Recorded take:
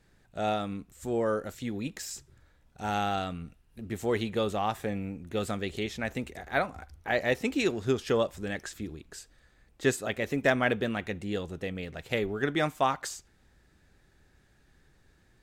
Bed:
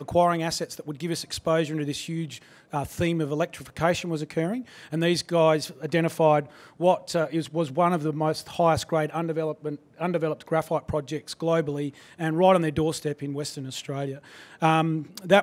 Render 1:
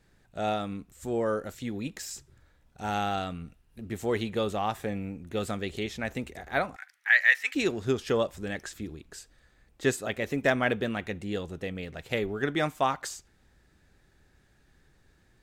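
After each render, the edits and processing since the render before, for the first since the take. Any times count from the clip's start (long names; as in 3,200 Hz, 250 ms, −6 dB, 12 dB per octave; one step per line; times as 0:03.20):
0:06.76–0:07.55: high-pass with resonance 1,800 Hz, resonance Q 4.7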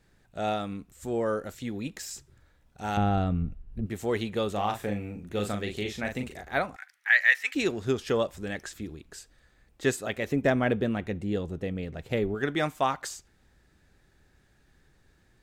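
0:02.97–0:03.86: spectral tilt −4 dB per octave
0:04.52–0:06.41: double-tracking delay 39 ms −5.5 dB
0:10.32–0:12.35: tilt shelving filter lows +5 dB, about 720 Hz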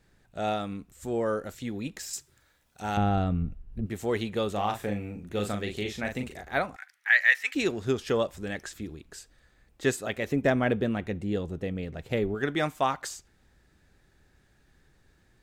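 0:02.13–0:02.82: spectral tilt +2.5 dB per octave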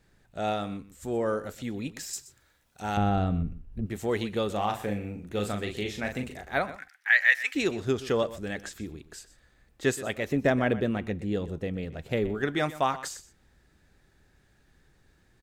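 single-tap delay 124 ms −16 dB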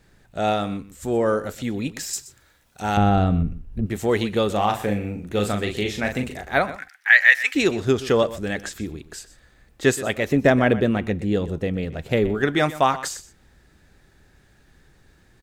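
level +7.5 dB
brickwall limiter −2 dBFS, peak gain reduction 1 dB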